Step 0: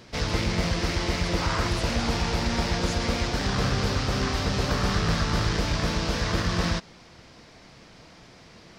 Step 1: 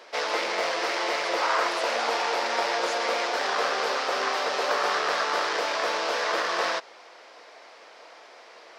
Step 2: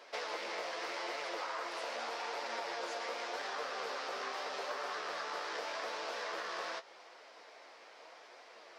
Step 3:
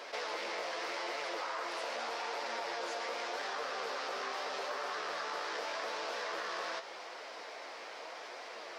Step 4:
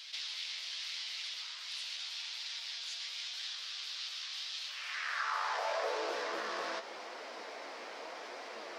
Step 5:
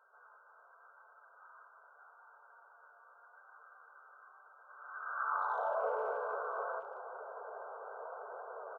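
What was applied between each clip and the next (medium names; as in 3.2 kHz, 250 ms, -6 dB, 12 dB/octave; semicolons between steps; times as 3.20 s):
high-pass 490 Hz 24 dB/octave; treble shelf 2.9 kHz -10.5 dB; trim +7 dB
compression, threshold -30 dBFS, peak gain reduction 9.5 dB; flange 0.83 Hz, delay 6.5 ms, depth 10 ms, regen +49%; trim -3 dB
level flattener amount 50%
high-pass sweep 3.5 kHz -> 220 Hz, 4.64–6.38 s
bit crusher 10-bit; brick-wall FIR band-pass 380–1600 Hz; speakerphone echo 220 ms, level -19 dB; trim +1 dB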